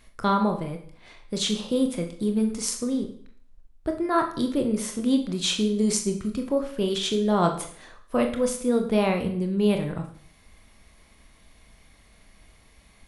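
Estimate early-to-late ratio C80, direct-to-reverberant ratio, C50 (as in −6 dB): 13.0 dB, 4.5 dB, 9.5 dB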